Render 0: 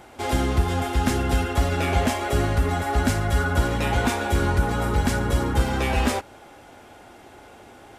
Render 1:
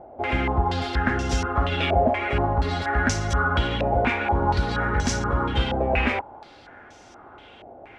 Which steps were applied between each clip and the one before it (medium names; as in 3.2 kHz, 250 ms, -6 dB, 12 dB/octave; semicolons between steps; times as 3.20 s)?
step-sequenced low-pass 4.2 Hz 660–6000 Hz; trim -2.5 dB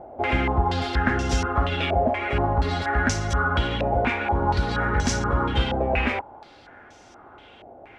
gain riding 0.5 s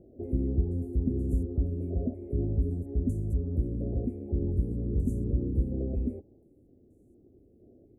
inverse Chebyshev band-stop 890–5500 Hz, stop band 50 dB; trim -3.5 dB